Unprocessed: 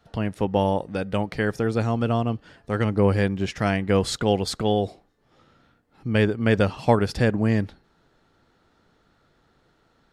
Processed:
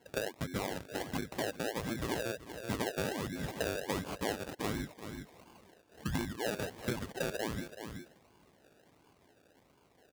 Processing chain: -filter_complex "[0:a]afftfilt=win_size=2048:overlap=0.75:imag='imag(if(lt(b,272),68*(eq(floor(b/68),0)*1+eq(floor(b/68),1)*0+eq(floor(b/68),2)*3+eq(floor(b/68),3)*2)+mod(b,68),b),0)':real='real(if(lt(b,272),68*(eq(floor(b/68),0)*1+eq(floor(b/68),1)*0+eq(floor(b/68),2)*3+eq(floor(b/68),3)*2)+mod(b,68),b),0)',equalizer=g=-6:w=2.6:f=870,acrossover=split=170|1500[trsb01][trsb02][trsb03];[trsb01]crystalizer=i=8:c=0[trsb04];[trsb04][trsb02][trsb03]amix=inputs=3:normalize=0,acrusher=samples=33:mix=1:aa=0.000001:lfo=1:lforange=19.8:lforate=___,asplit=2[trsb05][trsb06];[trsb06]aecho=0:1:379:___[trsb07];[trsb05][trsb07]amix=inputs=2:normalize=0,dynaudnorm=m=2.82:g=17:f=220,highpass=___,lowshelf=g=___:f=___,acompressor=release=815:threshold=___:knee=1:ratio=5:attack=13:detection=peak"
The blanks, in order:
1.4, 0.15, 53, -5.5, 300, 0.0224